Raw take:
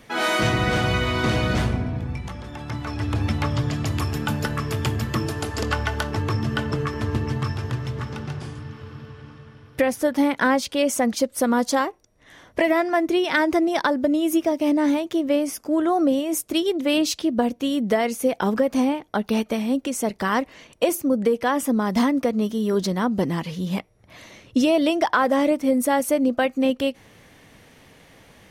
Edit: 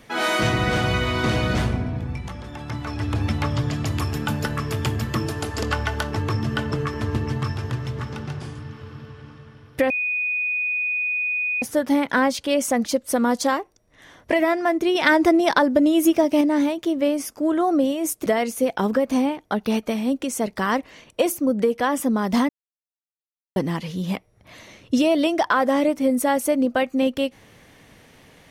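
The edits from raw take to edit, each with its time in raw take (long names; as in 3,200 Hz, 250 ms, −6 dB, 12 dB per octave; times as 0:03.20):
0:09.90: insert tone 2,480 Hz −21 dBFS 1.72 s
0:13.23–0:14.69: clip gain +3.5 dB
0:16.54–0:17.89: remove
0:22.12–0:23.19: silence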